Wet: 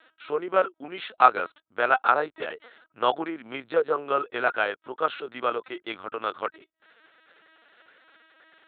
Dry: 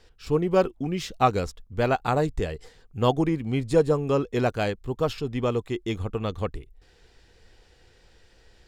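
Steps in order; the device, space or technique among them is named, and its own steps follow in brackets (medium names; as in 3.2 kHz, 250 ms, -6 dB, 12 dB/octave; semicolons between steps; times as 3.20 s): talking toy (LPC vocoder at 8 kHz pitch kept; high-pass 550 Hz 12 dB/octave; peaking EQ 1.4 kHz +11.5 dB 0.54 oct); trim +1 dB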